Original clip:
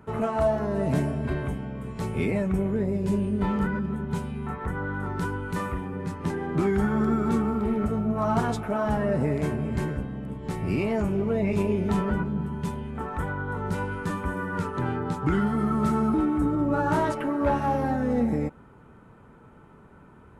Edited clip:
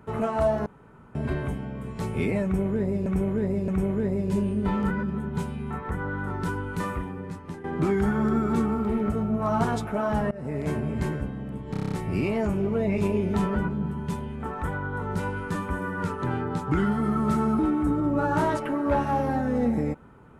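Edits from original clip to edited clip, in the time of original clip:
0.66–1.15 room tone
2.44–3.06 loop, 3 plays
5.72–6.4 fade out linear, to -12.5 dB
9.07–9.5 fade in, from -22.5 dB
10.47 stutter 0.03 s, 8 plays

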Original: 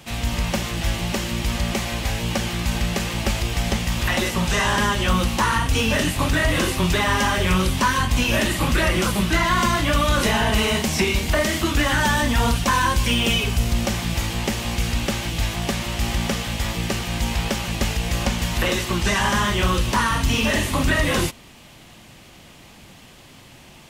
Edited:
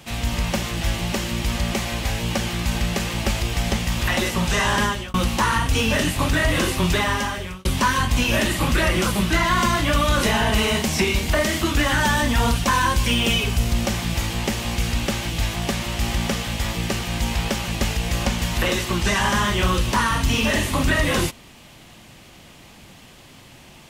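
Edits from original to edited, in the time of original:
4.83–5.14 fade out
6.97–7.65 fade out linear

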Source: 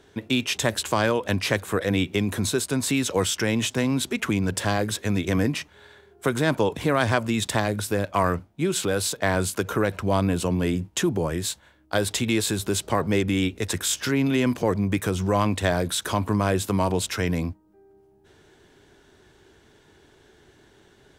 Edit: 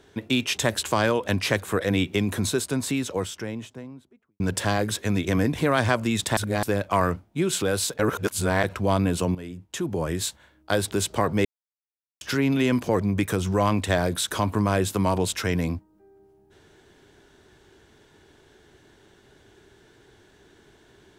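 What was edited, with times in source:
2.3–4.4 studio fade out
5.53–6.76 cut
7.6–7.86 reverse
9.22–9.87 reverse
10.58–11.32 fade in quadratic, from -14 dB
12.14–12.65 cut
13.19–13.95 mute

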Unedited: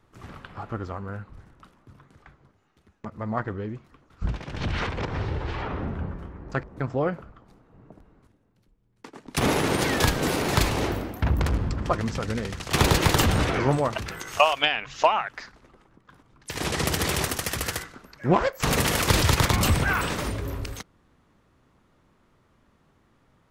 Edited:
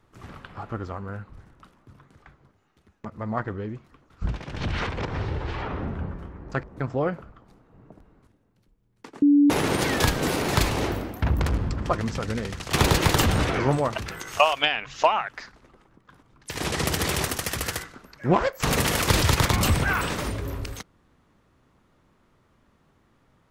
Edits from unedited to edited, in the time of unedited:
9.22–9.5 bleep 288 Hz -13 dBFS

